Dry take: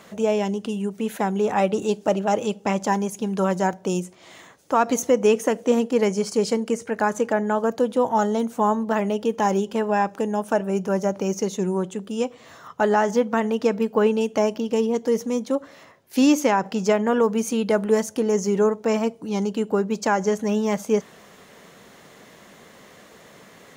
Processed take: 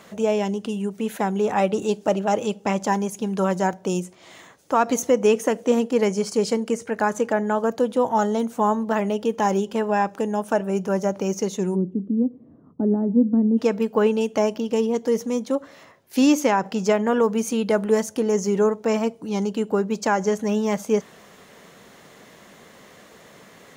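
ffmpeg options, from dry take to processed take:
-filter_complex "[0:a]asplit=3[a][b][c];[a]afade=t=out:st=11.74:d=0.02[d];[b]lowpass=f=270:t=q:w=3,afade=t=in:st=11.74:d=0.02,afade=t=out:st=13.57:d=0.02[e];[c]afade=t=in:st=13.57:d=0.02[f];[d][e][f]amix=inputs=3:normalize=0"

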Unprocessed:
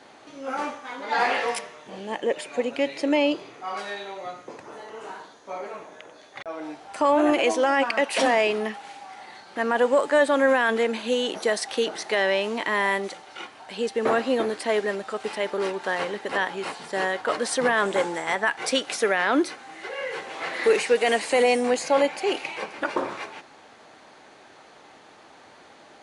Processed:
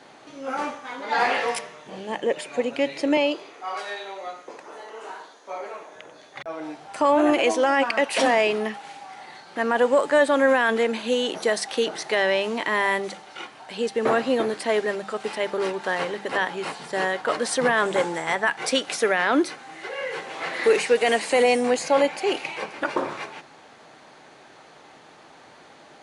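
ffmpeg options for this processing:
-filter_complex "[0:a]asettb=1/sr,asplit=3[a][b][c];[a]atrim=end=3.174[d];[b]atrim=start=3.17:end=5.96,asetpts=PTS-STARTPTS,afade=t=in:d=0.004:c=qsin,afade=t=out:st=2.786:d=0.004:c=qsin,highpass=350[e];[c]atrim=start=5.956[f];[d][e]acrossfade=d=0.004:c1=hsin:c2=qsin[g];[g][f]acrossfade=d=0.004:c1=qsin:c2=hsin,equalizer=f=150:t=o:w=0.3:g=8.5,bandreject=f=50:t=h:w=6,bandreject=f=100:t=h:w=6,bandreject=f=150:t=h:w=6,bandreject=f=200:t=h:w=6,volume=1dB"

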